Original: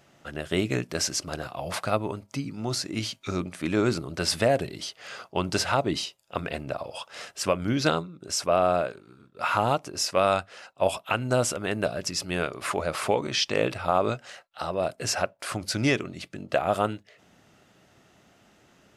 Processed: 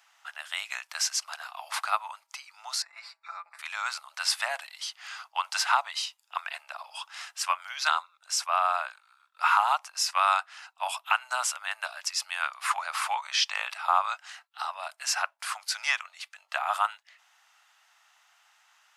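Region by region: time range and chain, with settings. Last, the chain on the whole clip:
0:02.82–0:03.59: moving average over 14 samples + comb filter 5.9 ms, depth 75%
whole clip: Butterworth high-pass 820 Hz 48 dB per octave; dynamic equaliser 1,100 Hz, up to +5 dB, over −35 dBFS, Q 0.99

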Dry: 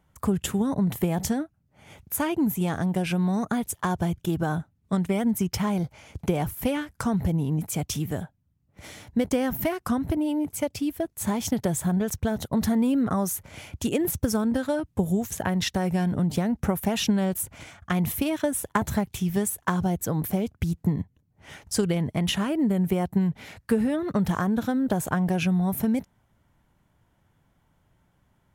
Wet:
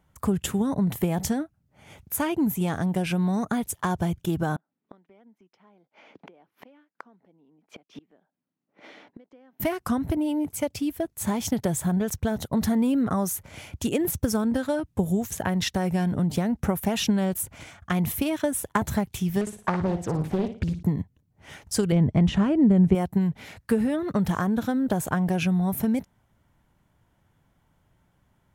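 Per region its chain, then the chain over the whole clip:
0:04.56–0:09.60: high-pass filter 250 Hz 24 dB per octave + high-frequency loss of the air 270 metres + gate with flip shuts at −30 dBFS, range −27 dB
0:19.41–0:20.83: high-frequency loss of the air 99 metres + flutter between parallel walls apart 9.9 metres, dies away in 0.39 s + highs frequency-modulated by the lows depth 0.73 ms
0:21.92–0:22.95: de-essing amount 60% + low-pass filter 8,300 Hz 24 dB per octave + spectral tilt −2.5 dB per octave
whole clip: no processing

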